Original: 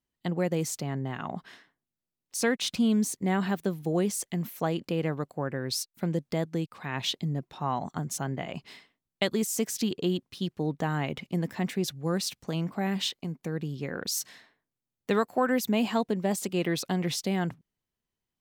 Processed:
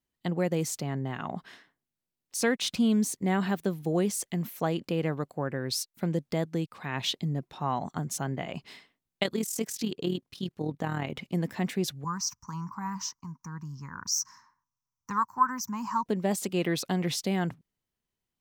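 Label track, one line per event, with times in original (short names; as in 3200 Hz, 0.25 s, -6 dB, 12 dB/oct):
9.230000	11.150000	AM modulator 39 Hz, depth 45%
12.040000	16.060000	EQ curve 100 Hz 0 dB, 250 Hz -10 dB, 450 Hz -26 dB, 660 Hz -29 dB, 970 Hz +12 dB, 1800 Hz -9 dB, 3600 Hz -26 dB, 5800 Hz +9 dB, 9700 Hz -20 dB, 15000 Hz -3 dB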